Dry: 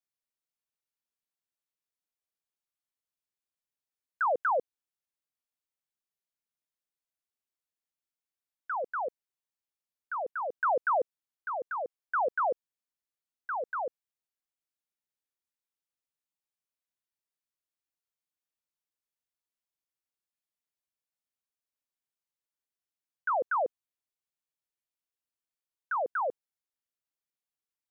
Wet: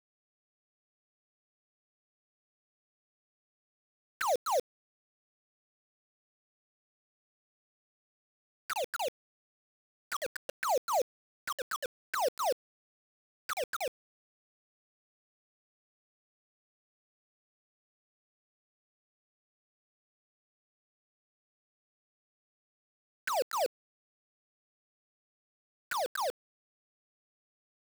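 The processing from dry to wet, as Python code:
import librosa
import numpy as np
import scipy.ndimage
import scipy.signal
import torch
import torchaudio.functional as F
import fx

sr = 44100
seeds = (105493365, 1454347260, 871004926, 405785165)

y = fx.spec_erase(x, sr, start_s=10.35, length_s=0.2, low_hz=550.0, high_hz=1400.0)
y = fx.env_flanger(y, sr, rest_ms=10.9, full_db=-29.5)
y = fx.quant_dither(y, sr, seeds[0], bits=6, dither='none')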